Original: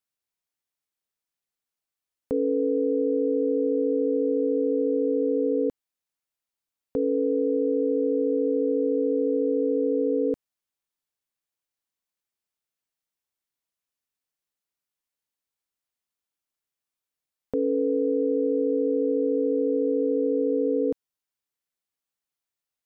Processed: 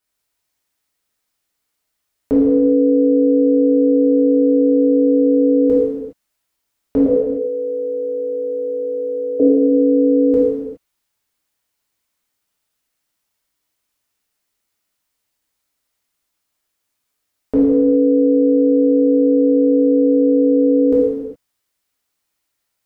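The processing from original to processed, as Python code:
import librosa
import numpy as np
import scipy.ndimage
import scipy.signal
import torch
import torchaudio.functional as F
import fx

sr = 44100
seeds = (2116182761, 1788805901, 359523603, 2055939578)

y = fx.highpass(x, sr, hz=530.0, slope=24, at=(7.06, 9.4))
y = fx.rev_gated(y, sr, seeds[0], gate_ms=440, shape='falling', drr_db=-7.0)
y = y * 10.0 ** (6.5 / 20.0)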